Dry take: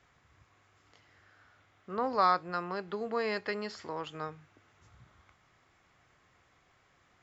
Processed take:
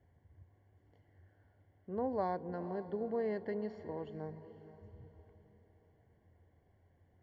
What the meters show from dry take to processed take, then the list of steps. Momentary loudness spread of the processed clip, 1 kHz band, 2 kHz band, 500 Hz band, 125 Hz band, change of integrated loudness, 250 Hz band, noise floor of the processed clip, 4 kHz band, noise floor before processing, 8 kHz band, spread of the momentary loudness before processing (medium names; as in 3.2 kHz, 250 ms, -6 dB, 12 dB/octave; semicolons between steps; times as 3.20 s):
20 LU, -11.0 dB, -15.0 dB, -2.0 dB, +1.0 dB, -6.0 dB, 0.0 dB, -71 dBFS, under -20 dB, -68 dBFS, no reading, 13 LU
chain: boxcar filter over 35 samples; peaking EQ 88 Hz +14 dB 0.27 oct; echo that smears into a reverb 471 ms, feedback 44%, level -14 dB